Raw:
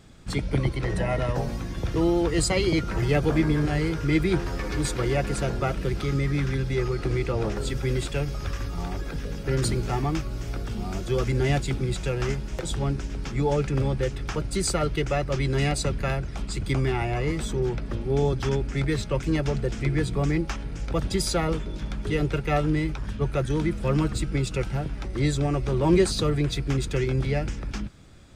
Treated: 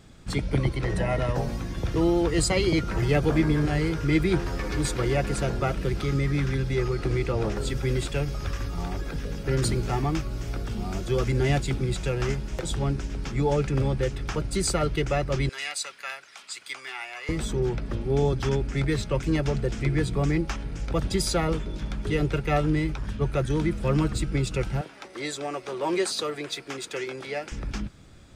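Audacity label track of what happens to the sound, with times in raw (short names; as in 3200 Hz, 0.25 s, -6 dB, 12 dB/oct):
15.490000	17.290000	HPF 1400 Hz
24.810000	27.520000	HPF 480 Hz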